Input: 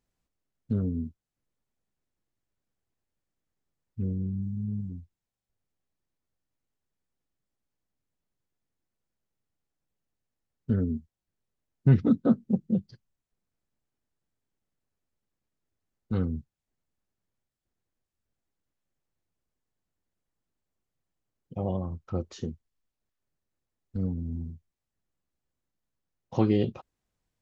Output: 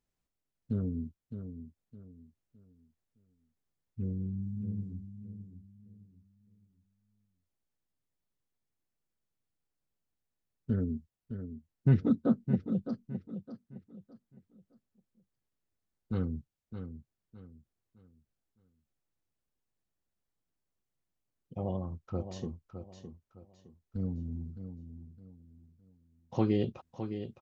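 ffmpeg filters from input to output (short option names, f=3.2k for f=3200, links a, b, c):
-af "aecho=1:1:612|1224|1836|2448:0.335|0.107|0.0343|0.011,volume=-4.5dB"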